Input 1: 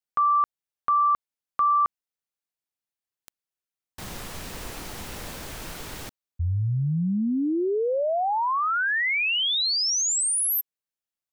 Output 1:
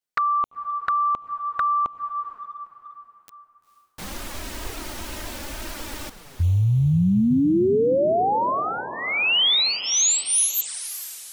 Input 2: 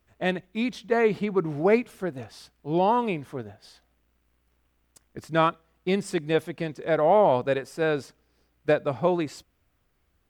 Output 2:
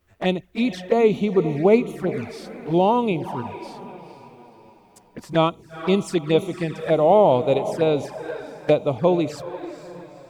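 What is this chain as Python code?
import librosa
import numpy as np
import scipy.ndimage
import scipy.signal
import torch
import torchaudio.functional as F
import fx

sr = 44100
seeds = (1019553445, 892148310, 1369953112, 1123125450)

y = fx.echo_diffused(x, sr, ms=463, feedback_pct=44, wet_db=-12)
y = fx.env_flanger(y, sr, rest_ms=11.4, full_db=-23.5)
y = y * librosa.db_to_amplitude(6.0)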